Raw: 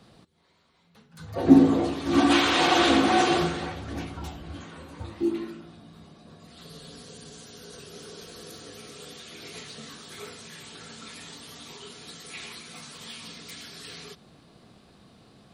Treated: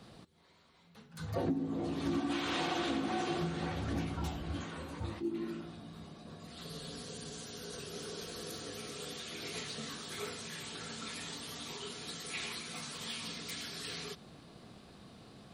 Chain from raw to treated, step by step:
dynamic equaliser 160 Hz, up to +8 dB, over −41 dBFS, Q 0.98
downward compressor 16 to 1, threshold −31 dBFS, peak gain reduction 26.5 dB
level that may rise only so fast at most 200 dB per second

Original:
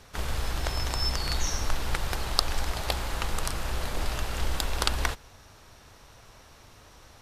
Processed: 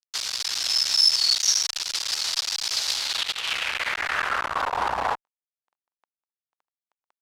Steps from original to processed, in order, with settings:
0:03.15–0:03.73: compressor whose output falls as the input rises −31 dBFS, ratio −0.5
fuzz pedal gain 36 dB, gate −41 dBFS
band-pass filter sweep 5,000 Hz → 920 Hz, 0:02.91–0:04.78
level +3 dB

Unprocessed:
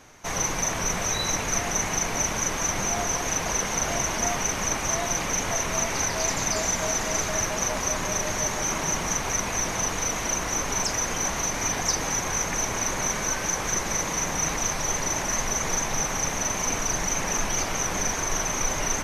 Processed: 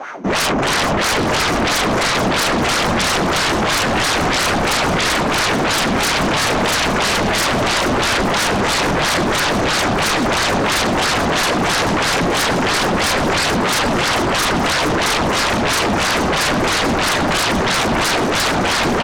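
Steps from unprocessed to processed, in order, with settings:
Butterworth high-pass 150 Hz 48 dB per octave
high-shelf EQ 6,800 Hz −6 dB
notch filter 1,800 Hz, Q 19
in parallel at −8 dB: sample-rate reduction 1,300 Hz, jitter 0%
on the sum: LFO wah 3 Hz 210–1,600 Hz, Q 3.3
sine wavefolder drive 19 dB, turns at −22.5 dBFS
on a send: echo with shifted repeats 434 ms, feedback 49%, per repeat −48 Hz, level −10.5 dB
on the sum: level +8.5 dB

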